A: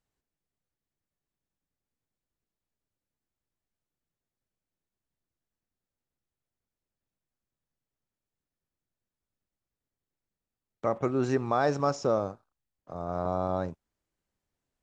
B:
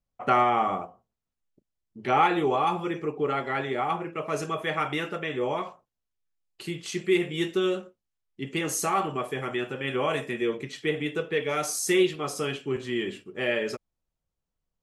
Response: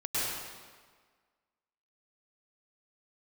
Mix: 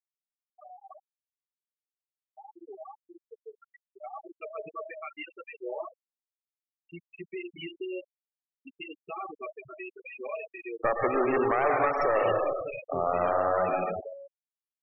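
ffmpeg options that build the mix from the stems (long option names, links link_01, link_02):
-filter_complex "[0:a]equalizer=frequency=1100:width=0.51:gain=9.5,aeval=exprs='clip(val(0),-1,0.0596)':channel_layout=same,volume=0.5dB,asplit=2[link_01][link_02];[link_02]volume=-7.5dB[link_03];[1:a]lowpass=frequency=2700:width_type=q:width=3.8,alimiter=limit=-17dB:level=0:latency=1:release=87,adynamicequalizer=threshold=0.00501:dfrequency=640:dqfactor=5.1:tfrequency=640:tqfactor=5.1:attack=5:release=100:ratio=0.375:range=3.5:mode=boostabove:tftype=bell,adelay=250,volume=-9.5dB,afade=type=in:start_time=3.95:duration=0.26:silence=0.398107,asplit=2[link_04][link_05];[link_05]volume=-21dB[link_06];[2:a]atrim=start_sample=2205[link_07];[link_03][link_06]amix=inputs=2:normalize=0[link_08];[link_08][link_07]afir=irnorm=-1:irlink=0[link_09];[link_01][link_04][link_09]amix=inputs=3:normalize=0,acrossover=split=310[link_10][link_11];[link_10]acompressor=threshold=-35dB:ratio=6[link_12];[link_12][link_11]amix=inputs=2:normalize=0,afftfilt=real='re*gte(hypot(re,im),0.0631)':imag='im*gte(hypot(re,im),0.0631)':win_size=1024:overlap=0.75,alimiter=limit=-15dB:level=0:latency=1:release=339"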